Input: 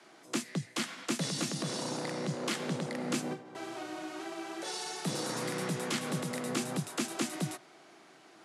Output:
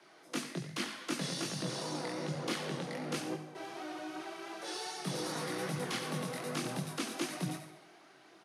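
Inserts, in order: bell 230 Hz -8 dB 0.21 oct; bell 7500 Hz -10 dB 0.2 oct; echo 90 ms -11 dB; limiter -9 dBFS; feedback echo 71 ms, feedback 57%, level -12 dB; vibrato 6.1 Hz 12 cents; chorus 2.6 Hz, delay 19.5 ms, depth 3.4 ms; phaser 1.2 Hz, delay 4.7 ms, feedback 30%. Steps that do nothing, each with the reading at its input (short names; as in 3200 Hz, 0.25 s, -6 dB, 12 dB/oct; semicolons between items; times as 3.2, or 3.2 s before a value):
limiter -9 dBFS: input peak -19.5 dBFS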